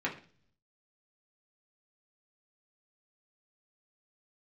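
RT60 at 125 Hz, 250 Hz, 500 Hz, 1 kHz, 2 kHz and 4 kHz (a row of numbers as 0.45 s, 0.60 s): 0.95 s, 0.70 s, 0.50 s, 0.40 s, 0.40 s, 0.50 s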